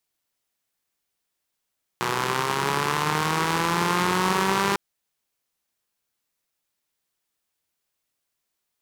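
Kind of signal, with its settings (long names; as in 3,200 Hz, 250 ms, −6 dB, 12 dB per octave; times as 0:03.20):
pulse-train model of a four-cylinder engine, changing speed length 2.75 s, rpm 3,600, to 6,000, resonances 180/380/960 Hz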